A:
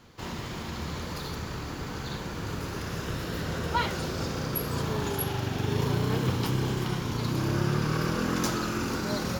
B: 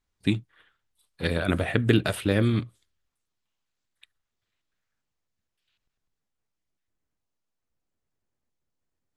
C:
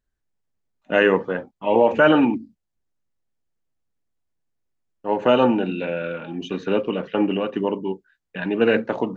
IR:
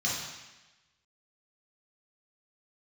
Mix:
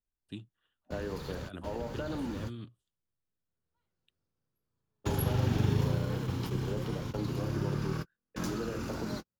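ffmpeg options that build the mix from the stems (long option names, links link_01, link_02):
-filter_complex "[0:a]lowshelf=frequency=150:gain=6.5,volume=-0.5dB,afade=type=in:start_time=3.43:duration=0.47:silence=0.375837,afade=type=out:start_time=5.58:duration=0.48:silence=0.375837[link_01];[1:a]agate=range=-33dB:threshold=-59dB:ratio=3:detection=peak,equalizer=frequency=2900:width=5.3:gain=10,adelay=50,volume=-19dB[link_02];[2:a]highshelf=frequency=2100:gain=-12,volume=-12.5dB,asplit=2[link_03][link_04];[link_04]apad=whole_len=414383[link_05];[link_01][link_05]sidechaingate=range=-58dB:threshold=-48dB:ratio=16:detection=peak[link_06];[link_02][link_03]amix=inputs=2:normalize=0,equalizer=frequency=2200:width_type=o:width=0.33:gain=-13,acompressor=threshold=-32dB:ratio=6,volume=0dB[link_07];[link_06][link_07]amix=inputs=2:normalize=0,acrossover=split=270[link_08][link_09];[link_09]acompressor=threshold=-36dB:ratio=2.5[link_10];[link_08][link_10]amix=inputs=2:normalize=0"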